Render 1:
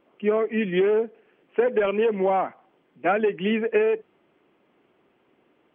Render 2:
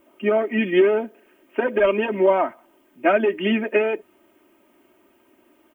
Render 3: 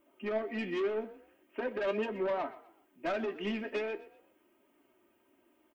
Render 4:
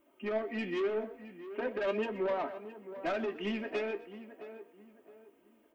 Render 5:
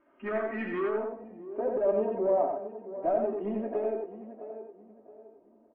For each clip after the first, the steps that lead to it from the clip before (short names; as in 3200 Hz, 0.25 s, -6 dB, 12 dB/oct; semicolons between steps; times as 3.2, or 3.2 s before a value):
comb 3.2 ms, depth 85%; added noise violet -72 dBFS; gain +2.5 dB
soft clip -17 dBFS, distortion -12 dB; frequency-shifting echo 0.124 s, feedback 34%, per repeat +32 Hz, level -17.5 dB; flange 0.42 Hz, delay 6.5 ms, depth 8.8 ms, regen +63%; gain -7 dB
tape echo 0.666 s, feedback 38%, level -11 dB, low-pass 1400 Hz
low-pass sweep 1600 Hz -> 690 Hz, 0.68–1.35; echo 90 ms -3.5 dB; AAC 24 kbps 22050 Hz